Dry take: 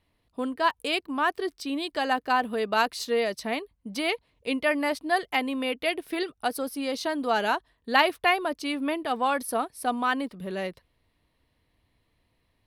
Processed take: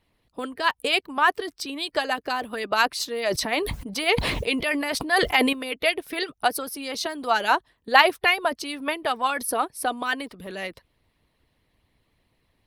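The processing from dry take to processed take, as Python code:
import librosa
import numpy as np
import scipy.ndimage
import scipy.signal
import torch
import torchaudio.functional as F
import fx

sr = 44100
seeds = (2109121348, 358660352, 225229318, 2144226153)

y = fx.hpss(x, sr, part='harmonic', gain_db=-12)
y = fx.sustainer(y, sr, db_per_s=33.0, at=(3.1, 5.53))
y = y * 10.0 ** (7.0 / 20.0)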